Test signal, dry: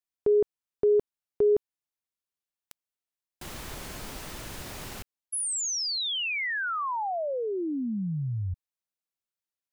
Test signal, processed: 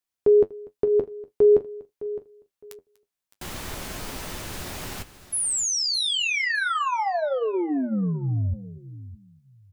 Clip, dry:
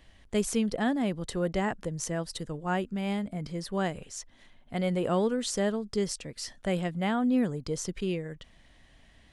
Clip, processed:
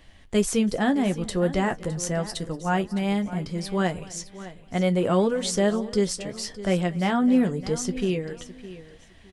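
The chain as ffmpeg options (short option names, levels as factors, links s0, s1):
-filter_complex "[0:a]asplit=2[s0][s1];[s1]aecho=0:1:243:0.0841[s2];[s0][s2]amix=inputs=2:normalize=0,flanger=delay=9.7:depth=1.9:regen=-48:speed=0.35:shape=triangular,asplit=2[s3][s4];[s4]aecho=0:1:611|1222:0.168|0.0353[s5];[s3][s5]amix=inputs=2:normalize=0,volume=2.82"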